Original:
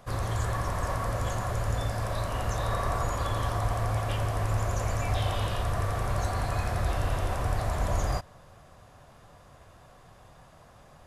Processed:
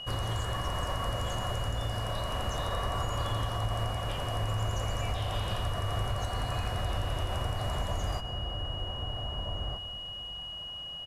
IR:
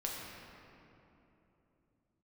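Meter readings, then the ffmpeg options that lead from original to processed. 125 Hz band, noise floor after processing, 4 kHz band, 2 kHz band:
−3.0 dB, −41 dBFS, +8.5 dB, −3.5 dB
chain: -filter_complex "[0:a]asplit=2[link_01][link_02];[link_02]adelay=1574,volume=-8dB,highshelf=frequency=4000:gain=-35.4[link_03];[link_01][link_03]amix=inputs=2:normalize=0,aeval=exprs='val(0)+0.0112*sin(2*PI*2900*n/s)':channel_layout=same,acompressor=threshold=-28dB:ratio=6,asplit=2[link_04][link_05];[1:a]atrim=start_sample=2205,adelay=129[link_06];[link_05][link_06]afir=irnorm=-1:irlink=0,volume=-15dB[link_07];[link_04][link_07]amix=inputs=2:normalize=0"

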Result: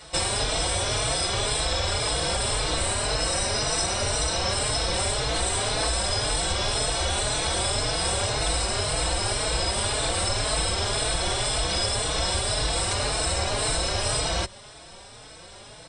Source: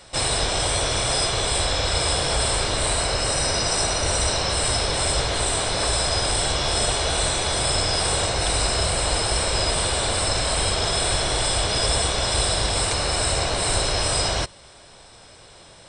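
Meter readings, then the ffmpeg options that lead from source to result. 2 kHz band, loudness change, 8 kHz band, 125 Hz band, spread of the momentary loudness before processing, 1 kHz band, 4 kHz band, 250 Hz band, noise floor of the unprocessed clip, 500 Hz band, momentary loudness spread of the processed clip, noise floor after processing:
−3.0 dB, −3.0 dB, −3.0 dB, −3.0 dB, 1 LU, −3.0 dB, −3.0 dB, −3.0 dB, −47 dBFS, −3.0 dB, 1 LU, −45 dBFS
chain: -filter_complex "[0:a]acompressor=threshold=-24dB:ratio=6,asplit=2[link_01][link_02];[link_02]adelay=4.2,afreqshift=1.9[link_03];[link_01][link_03]amix=inputs=2:normalize=1,volume=5dB"

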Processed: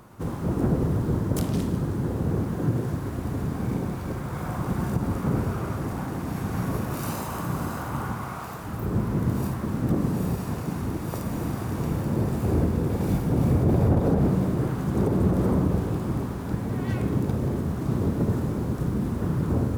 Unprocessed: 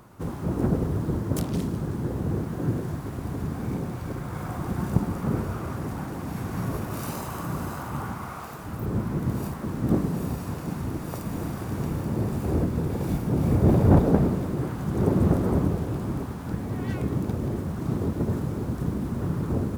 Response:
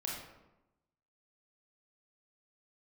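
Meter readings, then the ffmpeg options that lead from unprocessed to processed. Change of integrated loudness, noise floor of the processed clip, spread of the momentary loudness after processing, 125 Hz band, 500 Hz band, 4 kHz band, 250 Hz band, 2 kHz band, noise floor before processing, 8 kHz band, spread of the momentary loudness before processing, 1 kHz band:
+1.0 dB, −33 dBFS, 8 LU, +1.0 dB, +0.5 dB, +1.5 dB, +1.0 dB, +1.5 dB, −36 dBFS, +1.5 dB, 10 LU, +1.0 dB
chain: -filter_complex "[0:a]alimiter=limit=-15dB:level=0:latency=1:release=88,asplit=2[link_01][link_02];[1:a]atrim=start_sample=2205,asetrate=32193,aresample=44100[link_03];[link_02][link_03]afir=irnorm=-1:irlink=0,volume=-7dB[link_04];[link_01][link_04]amix=inputs=2:normalize=0,volume=-1.5dB"

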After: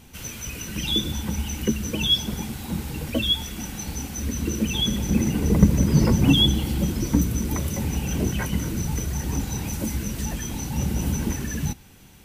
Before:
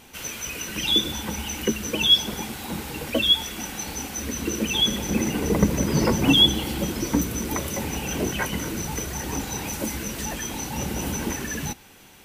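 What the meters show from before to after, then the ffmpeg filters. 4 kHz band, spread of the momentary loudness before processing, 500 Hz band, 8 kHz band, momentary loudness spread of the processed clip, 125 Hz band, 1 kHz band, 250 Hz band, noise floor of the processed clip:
−4.0 dB, 13 LU, −3.5 dB, −2.5 dB, 13 LU, +6.5 dB, −5.0 dB, +2.0 dB, −47 dBFS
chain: -af "bass=frequency=250:gain=13,treble=frequency=4000:gain=3,volume=-5dB"

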